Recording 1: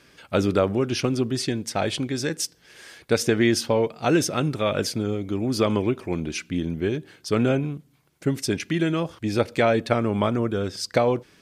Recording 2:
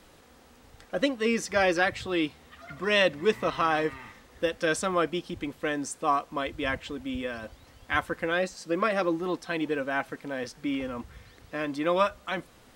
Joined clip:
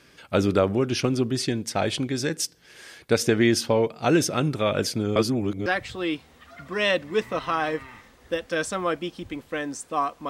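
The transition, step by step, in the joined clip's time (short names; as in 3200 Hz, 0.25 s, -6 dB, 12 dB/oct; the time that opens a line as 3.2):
recording 1
5.16–5.66 reverse
5.66 switch to recording 2 from 1.77 s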